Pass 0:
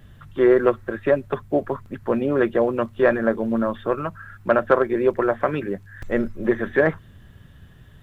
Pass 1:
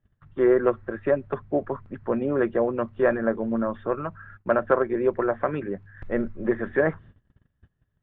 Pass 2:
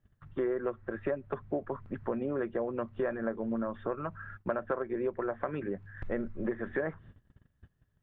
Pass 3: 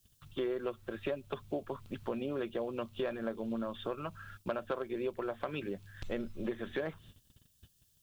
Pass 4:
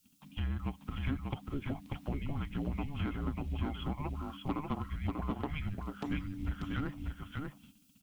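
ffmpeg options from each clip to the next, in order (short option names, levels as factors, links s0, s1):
-af "lowpass=2100,agate=range=0.0631:threshold=0.00794:ratio=16:detection=peak,volume=0.668"
-af "acompressor=threshold=0.0282:ratio=4"
-af "aexciter=amount=14.7:drive=4.3:freq=2800,volume=0.668"
-filter_complex "[0:a]afreqshift=-300,asplit=2[s0][s1];[s1]aecho=0:1:591:0.668[s2];[s0][s2]amix=inputs=2:normalize=0"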